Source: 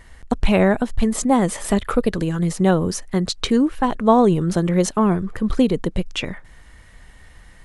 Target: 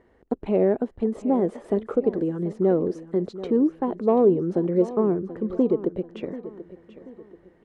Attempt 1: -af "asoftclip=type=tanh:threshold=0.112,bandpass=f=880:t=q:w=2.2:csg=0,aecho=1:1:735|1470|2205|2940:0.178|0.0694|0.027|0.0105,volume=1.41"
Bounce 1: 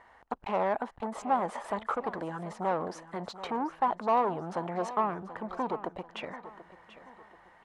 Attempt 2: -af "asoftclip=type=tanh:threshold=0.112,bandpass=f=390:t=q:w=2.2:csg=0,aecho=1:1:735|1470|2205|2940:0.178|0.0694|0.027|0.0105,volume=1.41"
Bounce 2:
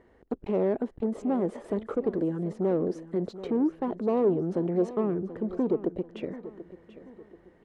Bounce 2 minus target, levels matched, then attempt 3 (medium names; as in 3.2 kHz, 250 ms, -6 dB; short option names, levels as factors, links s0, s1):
saturation: distortion +11 dB
-af "asoftclip=type=tanh:threshold=0.398,bandpass=f=390:t=q:w=2.2:csg=0,aecho=1:1:735|1470|2205|2940:0.178|0.0694|0.027|0.0105,volume=1.41"